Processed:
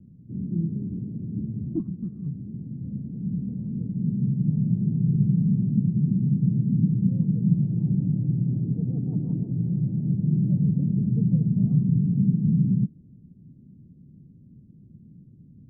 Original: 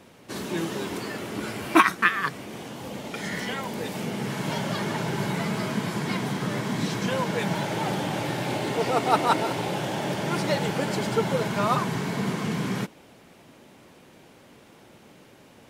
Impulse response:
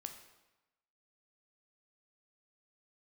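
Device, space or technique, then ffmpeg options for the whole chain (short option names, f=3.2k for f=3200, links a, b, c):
the neighbour's flat through the wall: -af "lowpass=f=200:w=0.5412,lowpass=f=200:w=1.3066,equalizer=f=150:t=o:w=0.77:g=3.5,volume=8dB"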